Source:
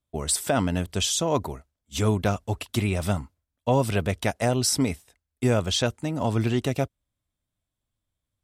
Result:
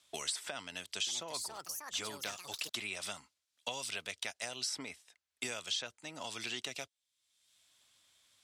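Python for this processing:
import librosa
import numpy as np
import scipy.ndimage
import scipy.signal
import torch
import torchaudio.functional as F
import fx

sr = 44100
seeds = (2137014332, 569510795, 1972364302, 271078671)

y = scipy.signal.sosfilt(scipy.signal.butter(2, 4800.0, 'lowpass', fs=sr, output='sos'), x)
y = np.diff(y, prepend=0.0)
y = fx.echo_pitch(y, sr, ms=419, semitones=5, count=2, db_per_echo=-6.0, at=(0.65, 2.8))
y = fx.band_squash(y, sr, depth_pct=100)
y = F.gain(torch.from_numpy(y), 1.0).numpy()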